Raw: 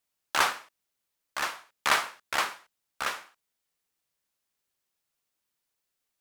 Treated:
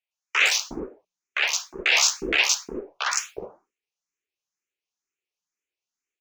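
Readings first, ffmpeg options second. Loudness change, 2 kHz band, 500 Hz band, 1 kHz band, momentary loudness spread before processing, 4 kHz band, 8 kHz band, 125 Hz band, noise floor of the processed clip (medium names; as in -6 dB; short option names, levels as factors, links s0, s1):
+7.5 dB, +7.5 dB, +6.5 dB, -3.0 dB, 14 LU, +10.0 dB, +13.5 dB, +7.0 dB, under -85 dBFS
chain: -filter_complex "[0:a]bandreject=f=60:t=h:w=6,bandreject=f=120:t=h:w=6,bandreject=f=180:t=h:w=6,bandreject=f=240:t=h:w=6,bandreject=f=300:t=h:w=6,afftdn=nr=14:nf=-53,aresample=16000,aeval=exprs='(mod(10.6*val(0)+1,2)-1)/10.6':c=same,aresample=44100,equalizer=f=100:t=o:w=0.67:g=-8,equalizer=f=400:t=o:w=0.67:g=10,equalizer=f=2500:t=o:w=0.67:g=11,equalizer=f=6300:t=o:w=0.67:g=10,acrusher=bits=6:mode=log:mix=0:aa=0.000001,acrossover=split=590|3900[s0][s1][s2];[s2]adelay=110[s3];[s0]adelay=360[s4];[s4][s1][s3]amix=inputs=3:normalize=0,asplit=2[s5][s6];[s6]afreqshift=2.1[s7];[s5][s7]amix=inputs=2:normalize=1,volume=2.24"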